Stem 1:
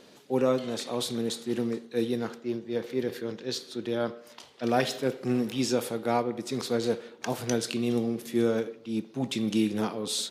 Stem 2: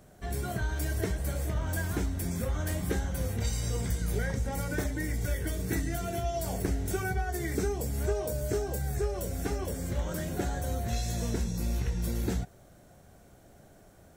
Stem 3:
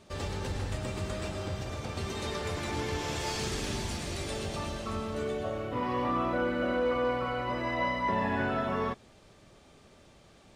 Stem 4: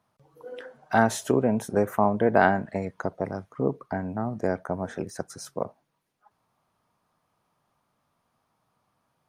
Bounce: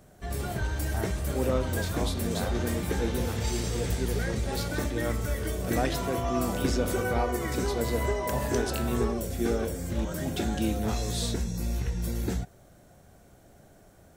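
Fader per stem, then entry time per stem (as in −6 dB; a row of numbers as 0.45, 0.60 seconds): −4.0, +0.5, −5.5, −18.0 decibels; 1.05, 0.00, 0.20, 0.00 seconds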